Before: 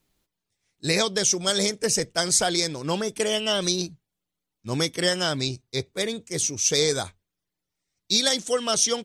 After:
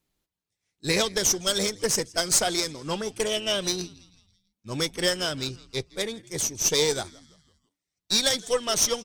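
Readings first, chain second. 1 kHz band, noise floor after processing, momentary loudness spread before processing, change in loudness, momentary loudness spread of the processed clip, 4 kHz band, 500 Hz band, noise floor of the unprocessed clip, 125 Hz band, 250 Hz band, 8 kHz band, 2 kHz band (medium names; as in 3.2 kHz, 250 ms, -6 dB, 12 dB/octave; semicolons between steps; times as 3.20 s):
-2.0 dB, under -85 dBFS, 9 LU, -1.5 dB, 10 LU, -1.5 dB, -2.0 dB, -84 dBFS, -4.5 dB, -3.5 dB, -1.0 dB, -1.5 dB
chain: frequency-shifting echo 165 ms, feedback 47%, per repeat -94 Hz, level -20 dB; Chebyshev shaper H 5 -22 dB, 8 -21 dB, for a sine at -5 dBFS; upward expansion 1.5:1, over -29 dBFS; trim -2 dB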